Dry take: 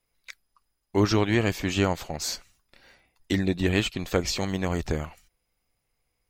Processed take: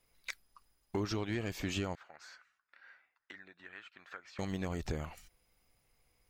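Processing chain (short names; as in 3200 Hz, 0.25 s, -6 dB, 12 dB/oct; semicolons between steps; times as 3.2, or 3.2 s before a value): compressor 6:1, threshold -36 dBFS, peak gain reduction 18 dB; 1.95–4.39 band-pass 1500 Hz, Q 3.8; soft clip -27.5 dBFS, distortion -20 dB; gain +3.5 dB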